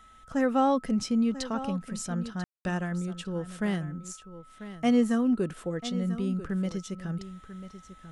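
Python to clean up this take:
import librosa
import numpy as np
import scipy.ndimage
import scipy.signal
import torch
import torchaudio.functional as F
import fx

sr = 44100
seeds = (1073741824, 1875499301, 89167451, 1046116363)

y = fx.notch(x, sr, hz=1300.0, q=30.0)
y = fx.fix_ambience(y, sr, seeds[0], print_start_s=4.12, print_end_s=4.62, start_s=2.44, end_s=2.65)
y = fx.fix_echo_inverse(y, sr, delay_ms=992, level_db=-13.0)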